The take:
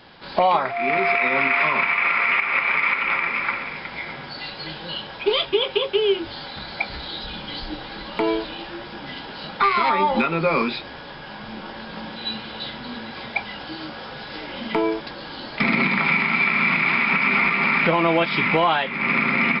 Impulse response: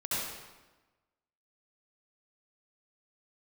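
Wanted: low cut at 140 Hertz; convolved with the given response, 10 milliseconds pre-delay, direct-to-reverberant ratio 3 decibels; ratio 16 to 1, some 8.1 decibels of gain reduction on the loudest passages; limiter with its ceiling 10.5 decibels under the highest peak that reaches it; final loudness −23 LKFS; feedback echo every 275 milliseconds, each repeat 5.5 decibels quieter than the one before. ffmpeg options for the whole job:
-filter_complex "[0:a]highpass=140,acompressor=threshold=-22dB:ratio=16,alimiter=limit=-20dB:level=0:latency=1,aecho=1:1:275|550|825|1100|1375|1650|1925:0.531|0.281|0.149|0.079|0.0419|0.0222|0.0118,asplit=2[link_01][link_02];[1:a]atrim=start_sample=2205,adelay=10[link_03];[link_02][link_03]afir=irnorm=-1:irlink=0,volume=-9.5dB[link_04];[link_01][link_04]amix=inputs=2:normalize=0,volume=3.5dB"

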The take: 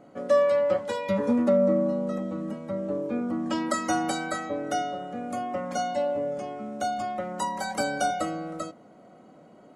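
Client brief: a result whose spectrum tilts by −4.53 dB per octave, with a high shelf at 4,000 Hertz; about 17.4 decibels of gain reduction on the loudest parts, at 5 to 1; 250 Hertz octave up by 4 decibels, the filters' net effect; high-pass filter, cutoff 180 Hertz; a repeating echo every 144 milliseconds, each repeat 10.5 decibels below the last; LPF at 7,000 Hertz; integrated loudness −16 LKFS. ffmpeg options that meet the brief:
ffmpeg -i in.wav -af "highpass=180,lowpass=7000,equalizer=frequency=250:width_type=o:gain=6,highshelf=frequency=4000:gain=3,acompressor=threshold=-36dB:ratio=5,aecho=1:1:144|288|432:0.299|0.0896|0.0269,volume=21.5dB" out.wav

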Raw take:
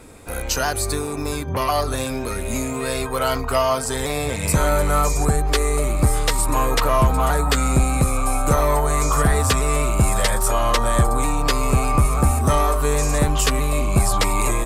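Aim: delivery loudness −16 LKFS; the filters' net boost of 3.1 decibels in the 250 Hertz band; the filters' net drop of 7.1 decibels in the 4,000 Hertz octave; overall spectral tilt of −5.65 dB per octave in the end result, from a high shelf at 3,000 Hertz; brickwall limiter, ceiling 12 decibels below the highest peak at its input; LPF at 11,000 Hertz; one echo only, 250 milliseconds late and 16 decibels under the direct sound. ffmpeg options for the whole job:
ffmpeg -i in.wav -af "lowpass=11000,equalizer=frequency=250:width_type=o:gain=4,highshelf=frequency=3000:gain=-4,equalizer=frequency=4000:width_type=o:gain=-6,alimiter=limit=-17dB:level=0:latency=1,aecho=1:1:250:0.158,volume=10.5dB" out.wav

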